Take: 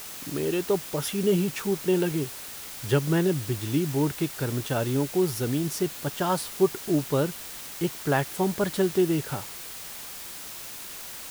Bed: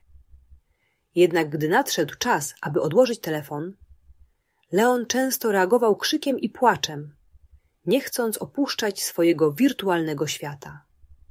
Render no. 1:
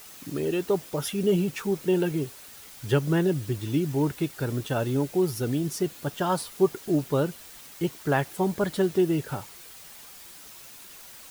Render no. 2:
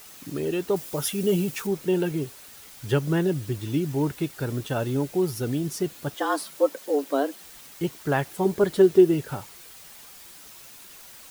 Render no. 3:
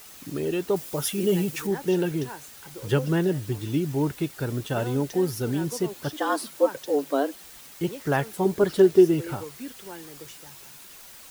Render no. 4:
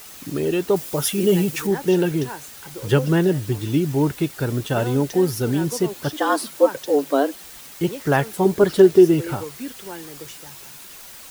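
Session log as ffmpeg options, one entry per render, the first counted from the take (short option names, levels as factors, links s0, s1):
-af "afftdn=nr=8:nf=-40"
-filter_complex "[0:a]asettb=1/sr,asplit=3[s0][s1][s2];[s0]atrim=end=0.764[s3];[s1]atrim=start=0.76:end=1.67,asetpts=PTS-STARTPTS,afade=t=in:d=0.004:c=qsin,afade=t=out:st=0.906:d=0.004:c=qsin,highshelf=f=5800:g=7.5[s4];[s2]atrim=start=1.666[s5];[s3][s4]acrossfade=d=0.004:c1=hsin:c2=qsin[s6];[s6][s5]acrossfade=d=0.004:c1=qsin:c2=hsin,asettb=1/sr,asplit=3[s7][s8][s9];[s7]atrim=end=6.144[s10];[s8]atrim=start=6.14:end=7.44,asetpts=PTS-STARTPTS,afade=t=in:d=0.004:c=qsin,afade=t=out:st=1.296:d=0.004:c=qsin,afreqshift=140[s11];[s9]atrim=start=7.436[s12];[s10][s11]acrossfade=d=0.004:c1=hsin:c2=qsin[s13];[s13][s12]acrossfade=d=0.004:c1=qsin:c2=hsin,asettb=1/sr,asplit=3[s14][s15][s16];[s14]atrim=end=8.454[s17];[s15]atrim=start=8.45:end=9.14,asetpts=PTS-STARTPTS,afade=t=in:d=0.004:c=qsin,afade=t=out:st=0.686:d=0.004:c=qsin,equalizer=f=390:t=o:w=0.34:g=9.5[s18];[s16]atrim=start=9.136[s19];[s17][s18]acrossfade=d=0.004:c1=hsin:c2=qsin[s20];[s20][s19]acrossfade=d=0.004:c1=qsin:c2=hsin"
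-filter_complex "[1:a]volume=0.112[s0];[0:a][s0]amix=inputs=2:normalize=0"
-af "volume=1.88,alimiter=limit=0.708:level=0:latency=1"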